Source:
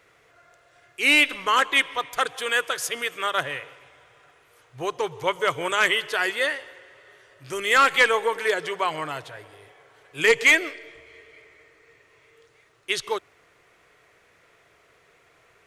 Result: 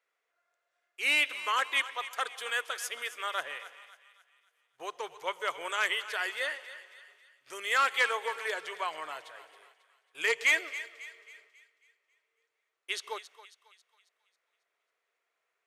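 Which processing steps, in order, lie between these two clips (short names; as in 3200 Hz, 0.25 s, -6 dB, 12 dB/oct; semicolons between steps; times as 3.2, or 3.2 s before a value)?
HPF 550 Hz 12 dB/oct; gate -52 dBFS, range -14 dB; on a send: thinning echo 0.272 s, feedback 46%, high-pass 800 Hz, level -13.5 dB; on the sum: gain -8.5 dB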